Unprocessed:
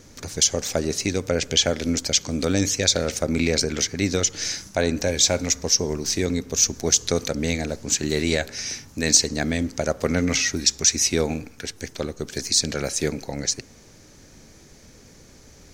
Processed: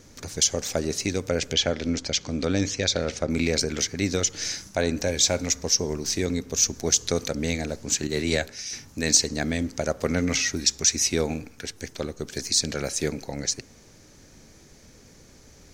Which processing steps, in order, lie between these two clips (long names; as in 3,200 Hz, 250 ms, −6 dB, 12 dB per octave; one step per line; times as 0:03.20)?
0:01.53–0:03.30: low-pass filter 5,200 Hz 12 dB per octave
0:08.07–0:08.73: multiband upward and downward expander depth 100%
level −2.5 dB